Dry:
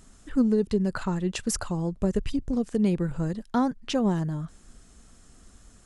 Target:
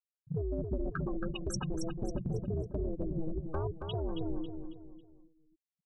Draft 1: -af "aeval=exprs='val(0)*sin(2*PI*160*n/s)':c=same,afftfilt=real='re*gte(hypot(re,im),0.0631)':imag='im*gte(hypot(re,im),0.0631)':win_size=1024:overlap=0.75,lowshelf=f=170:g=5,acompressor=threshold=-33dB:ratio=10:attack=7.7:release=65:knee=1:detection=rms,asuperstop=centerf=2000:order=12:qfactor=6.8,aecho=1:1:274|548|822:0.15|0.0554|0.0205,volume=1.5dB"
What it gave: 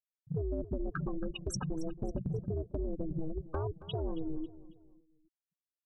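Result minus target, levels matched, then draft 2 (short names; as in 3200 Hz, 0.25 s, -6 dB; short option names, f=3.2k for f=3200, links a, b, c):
echo-to-direct -10.5 dB
-af "aeval=exprs='val(0)*sin(2*PI*160*n/s)':c=same,afftfilt=real='re*gte(hypot(re,im),0.0631)':imag='im*gte(hypot(re,im),0.0631)':win_size=1024:overlap=0.75,lowshelf=f=170:g=5,acompressor=threshold=-33dB:ratio=10:attack=7.7:release=65:knee=1:detection=rms,asuperstop=centerf=2000:order=12:qfactor=6.8,aecho=1:1:274|548|822|1096:0.501|0.185|0.0686|0.0254,volume=1.5dB"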